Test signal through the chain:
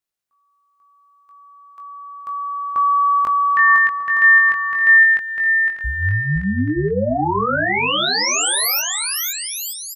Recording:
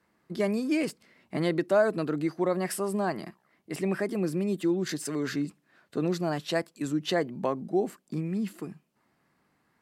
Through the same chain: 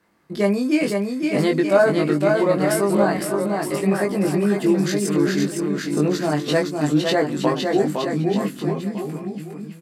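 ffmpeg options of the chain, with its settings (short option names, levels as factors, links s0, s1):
-filter_complex "[0:a]asplit=2[s0][s1];[s1]adelay=20,volume=0.708[s2];[s0][s2]amix=inputs=2:normalize=0,aecho=1:1:510|918|1244|1506|1714:0.631|0.398|0.251|0.158|0.1,volume=1.88"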